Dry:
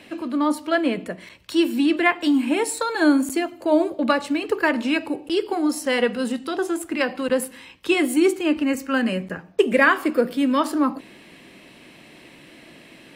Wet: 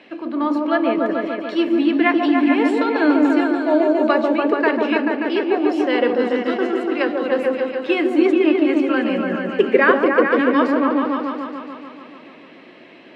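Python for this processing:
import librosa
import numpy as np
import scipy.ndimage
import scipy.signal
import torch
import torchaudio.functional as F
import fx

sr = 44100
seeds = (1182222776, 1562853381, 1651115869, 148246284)

y = scipy.signal.sosfilt(scipy.signal.butter(2, 270.0, 'highpass', fs=sr, output='sos'), x)
y = fx.air_absorb(y, sr, metres=220.0)
y = fx.echo_opening(y, sr, ms=145, hz=750, octaves=1, feedback_pct=70, wet_db=0)
y = y * 10.0 ** (2.0 / 20.0)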